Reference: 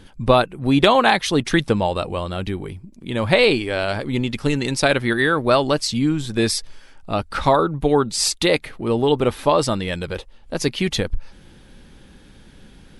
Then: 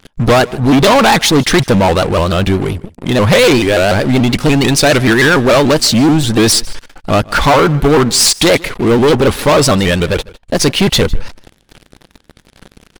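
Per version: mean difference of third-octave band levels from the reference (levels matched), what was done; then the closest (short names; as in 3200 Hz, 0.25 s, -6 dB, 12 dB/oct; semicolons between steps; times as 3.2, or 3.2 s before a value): 7.5 dB: sample leveller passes 5; echo 0.154 s -22 dB; shaped vibrato saw up 6.9 Hz, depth 160 cents; gain -3 dB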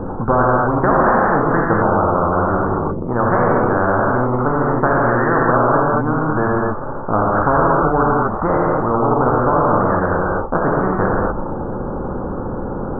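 15.5 dB: steep low-pass 1300 Hz 72 dB/oct; non-linear reverb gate 0.27 s flat, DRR -4 dB; spectral compressor 4:1; gain -4 dB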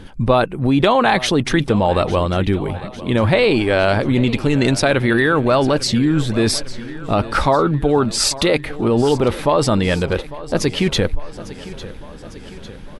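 5.0 dB: high shelf 3000 Hz -7.5 dB; in parallel at +2 dB: negative-ratio compressor -23 dBFS, ratio -1; on the sum: feedback echo 0.851 s, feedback 59%, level -17 dB; gain -1 dB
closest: third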